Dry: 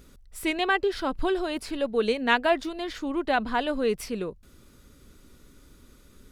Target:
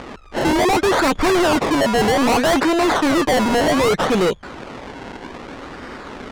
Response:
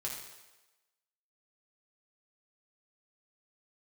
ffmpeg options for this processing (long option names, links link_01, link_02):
-filter_complex "[0:a]acrusher=samples=25:mix=1:aa=0.000001:lfo=1:lforange=25:lforate=0.64,asplit=2[link_01][link_02];[link_02]highpass=frequency=720:poles=1,volume=28dB,asoftclip=type=tanh:threshold=-7dB[link_03];[link_01][link_03]amix=inputs=2:normalize=0,lowpass=frequency=2100:poles=1,volume=-6dB,lowpass=7700,volume=23dB,asoftclip=hard,volume=-23dB,volume=8.5dB"